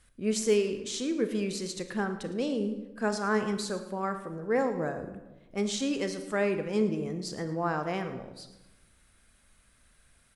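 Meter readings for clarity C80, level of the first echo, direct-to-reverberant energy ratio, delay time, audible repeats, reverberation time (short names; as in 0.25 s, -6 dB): 11.0 dB, -15.5 dB, 7.5 dB, 0.11 s, 1, 1.1 s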